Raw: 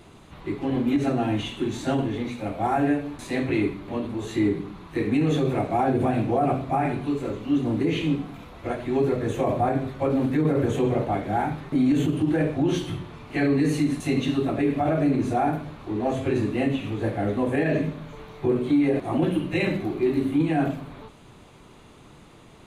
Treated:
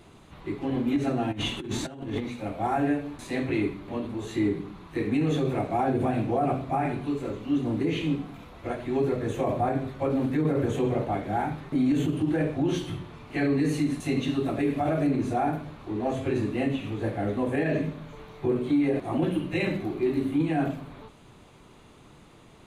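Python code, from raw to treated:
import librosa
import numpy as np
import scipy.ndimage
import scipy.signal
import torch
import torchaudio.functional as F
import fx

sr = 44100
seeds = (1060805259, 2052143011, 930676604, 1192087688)

y = fx.over_compress(x, sr, threshold_db=-30.0, ratio=-0.5, at=(1.31, 2.22), fade=0.02)
y = fx.high_shelf(y, sr, hz=5400.0, db=6.5, at=(14.45, 15.07))
y = y * 10.0 ** (-3.0 / 20.0)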